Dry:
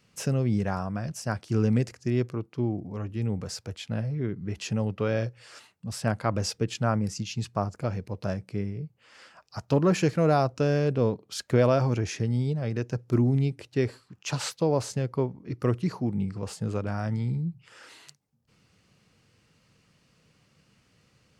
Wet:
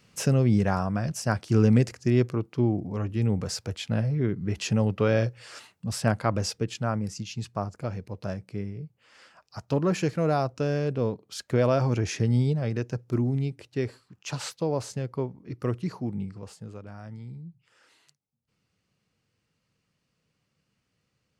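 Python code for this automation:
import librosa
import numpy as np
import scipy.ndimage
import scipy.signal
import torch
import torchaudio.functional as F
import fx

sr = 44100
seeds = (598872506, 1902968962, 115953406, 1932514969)

y = fx.gain(x, sr, db=fx.line((5.91, 4.0), (6.83, -2.5), (11.48, -2.5), (12.37, 4.0), (13.18, -3.0), (16.14, -3.0), (16.75, -12.0)))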